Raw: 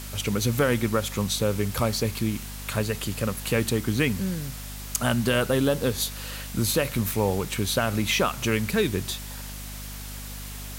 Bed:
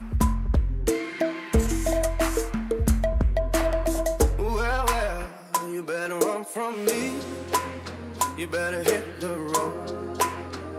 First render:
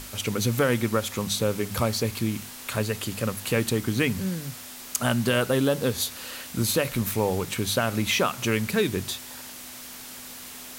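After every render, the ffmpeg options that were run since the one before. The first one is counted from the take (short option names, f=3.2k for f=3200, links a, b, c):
-af "bandreject=f=50:t=h:w=6,bandreject=f=100:t=h:w=6,bandreject=f=150:t=h:w=6,bandreject=f=200:t=h:w=6"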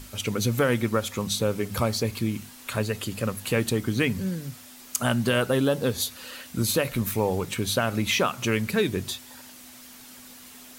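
-af "afftdn=nr=7:nf=-41"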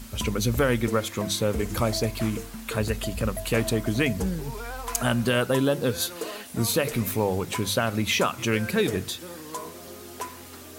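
-filter_complex "[1:a]volume=-11dB[a];[0:a][a]amix=inputs=2:normalize=0"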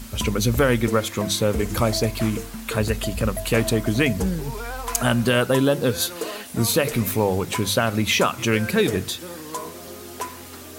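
-af "volume=4dB"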